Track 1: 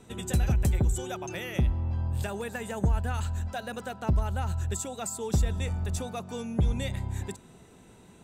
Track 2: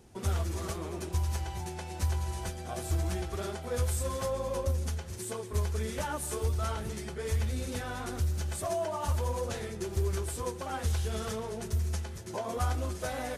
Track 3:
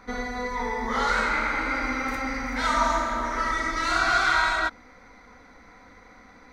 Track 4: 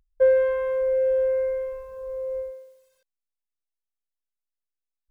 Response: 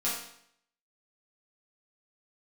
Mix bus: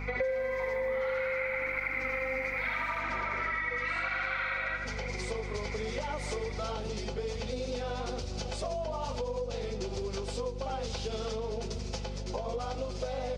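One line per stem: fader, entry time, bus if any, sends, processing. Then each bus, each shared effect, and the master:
-16.0 dB, 2.30 s, bus A, no send, no echo send, vocoder on a broken chord bare fifth, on B3, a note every 113 ms
0.0 dB, 0.00 s, bus A, no send, no echo send, bass shelf 390 Hz +9.5 dB
+2.0 dB, 0.00 s, bus A, no send, echo send -7.5 dB, resonant low-pass 2.3 kHz, resonance Q 6.5; cancelling through-zero flanger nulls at 0.87 Hz, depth 6 ms
+2.5 dB, 0.00 s, no bus, no send, no echo send, none
bus A: 0.0 dB, cabinet simulation 290–5400 Hz, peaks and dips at 330 Hz -9 dB, 500 Hz +10 dB, 810 Hz +4 dB, 1.7 kHz -7 dB, 2.5 kHz +3 dB, 4.8 kHz +4 dB; compression 3:1, threshold -32 dBFS, peak gain reduction 14 dB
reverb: none
echo: feedback delay 80 ms, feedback 43%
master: treble shelf 3.3 kHz +9.5 dB; hum 50 Hz, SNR 13 dB; compression 8:1, threshold -30 dBFS, peak gain reduction 17.5 dB

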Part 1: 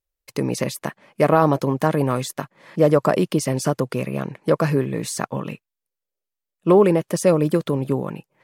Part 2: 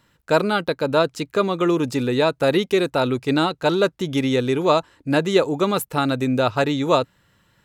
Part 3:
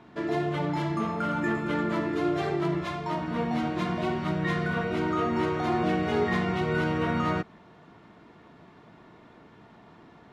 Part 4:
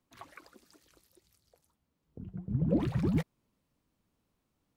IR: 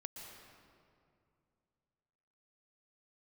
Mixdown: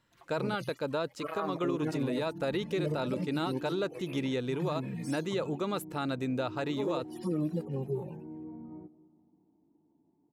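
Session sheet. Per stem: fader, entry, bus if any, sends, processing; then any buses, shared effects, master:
-3.5 dB, 0.00 s, no send, harmonic-percussive separation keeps harmonic; bass shelf 220 Hz -9 dB; cancelling through-zero flanger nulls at 0.37 Hz, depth 4.3 ms
-11.5 dB, 0.00 s, no send, treble shelf 9.9 kHz -6 dB
-11.5 dB, 1.45 s, send -9.5 dB, cascade formant filter u
-12.0 dB, 0.00 s, no send, comb 5.7 ms, depth 91%; compression, threshold -30 dBFS, peak gain reduction 10.5 dB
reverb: on, RT60 2.5 s, pre-delay 111 ms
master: peak limiter -23 dBFS, peak gain reduction 10 dB

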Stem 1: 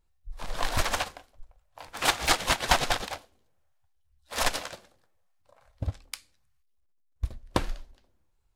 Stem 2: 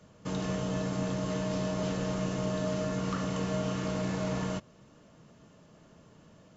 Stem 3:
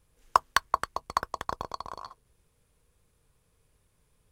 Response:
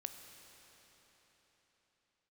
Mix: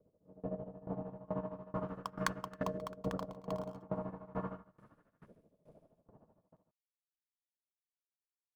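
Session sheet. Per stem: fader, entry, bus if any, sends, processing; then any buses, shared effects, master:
mute
-9.0 dB, 0.00 s, bus A, no send, echo send -4 dB, de-hum 66.02 Hz, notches 36; tremolo 13 Hz, depth 80%; LFO low-pass saw up 0.38 Hz 500–1700 Hz
-5.0 dB, 1.70 s, no bus, send -19 dB, no echo send, dead-time distortion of 0.11 ms
bus A: 0.0 dB, level rider gain up to 10.5 dB; peak limiter -25.5 dBFS, peak gain reduction 7.5 dB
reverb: on, RT60 4.2 s, pre-delay 14 ms
echo: delay 145 ms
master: treble shelf 4.3 kHz -5.5 dB; sawtooth tremolo in dB decaying 2.3 Hz, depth 22 dB

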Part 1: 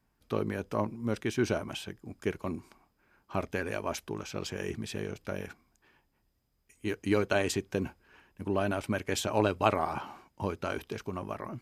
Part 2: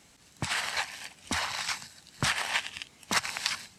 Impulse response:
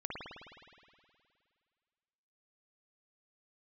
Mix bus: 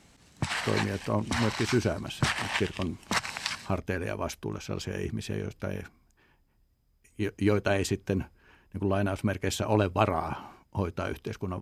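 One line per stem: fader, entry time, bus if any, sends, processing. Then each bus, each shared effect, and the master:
0.0 dB, 0.35 s, no send, bass shelf 170 Hz +9 dB
+0.5 dB, 0.00 s, no send, tilt EQ -1.5 dB/octave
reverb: none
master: none

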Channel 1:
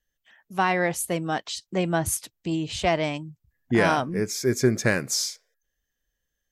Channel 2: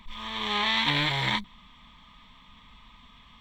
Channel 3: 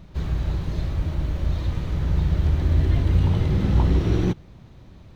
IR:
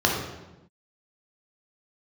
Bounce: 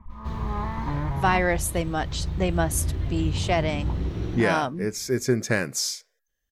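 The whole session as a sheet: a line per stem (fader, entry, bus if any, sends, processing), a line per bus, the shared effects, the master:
-1.0 dB, 0.65 s, no send, none
-4.5 dB, 0.00 s, no send, low-pass 1.3 kHz 24 dB/octave; peaking EQ 71 Hz +13 dB 1.7 oct
-8.5 dB, 0.10 s, no send, none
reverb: none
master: gain riding within 4 dB 2 s

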